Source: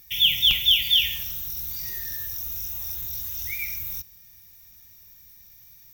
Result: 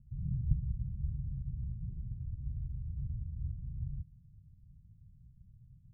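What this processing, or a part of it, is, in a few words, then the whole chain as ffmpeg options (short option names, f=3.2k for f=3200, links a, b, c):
the neighbour's flat through the wall: -af "lowpass=f=190:w=0.5412,lowpass=f=190:w=1.3066,equalizer=f=130:t=o:w=0.76:g=6,volume=6dB"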